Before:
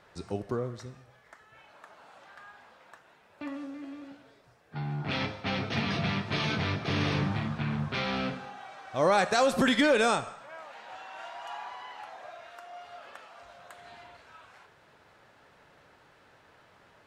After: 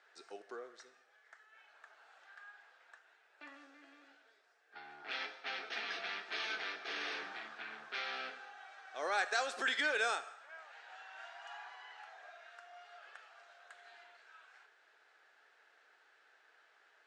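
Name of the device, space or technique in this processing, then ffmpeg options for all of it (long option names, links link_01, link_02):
phone speaker on a table: -af "highpass=frequency=450:width=0.5412,highpass=frequency=450:width=1.3066,equalizer=frequency=560:width_type=q:width=4:gain=-10,equalizer=frequency=1000:width_type=q:width=4:gain=-8,equalizer=frequency=1600:width_type=q:width=4:gain=6,lowpass=frequency=8400:width=0.5412,lowpass=frequency=8400:width=1.3066,volume=-7.5dB"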